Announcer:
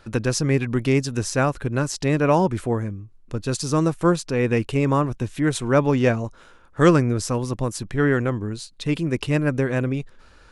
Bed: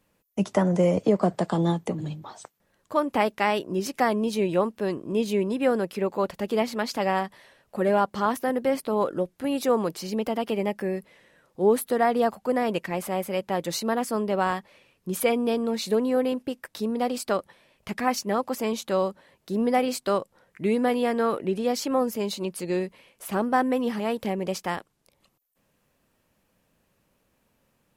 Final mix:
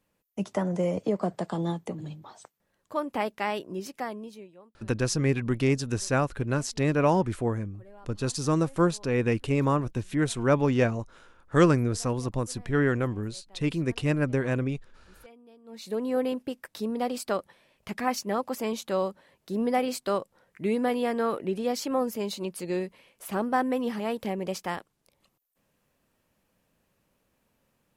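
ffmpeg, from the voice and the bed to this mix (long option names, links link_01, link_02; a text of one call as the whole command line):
ffmpeg -i stem1.wav -i stem2.wav -filter_complex "[0:a]adelay=4750,volume=-4.5dB[link_01];[1:a]volume=20.5dB,afade=type=out:start_time=3.62:duration=0.9:silence=0.0668344,afade=type=in:start_time=15.64:duration=0.54:silence=0.0473151[link_02];[link_01][link_02]amix=inputs=2:normalize=0" out.wav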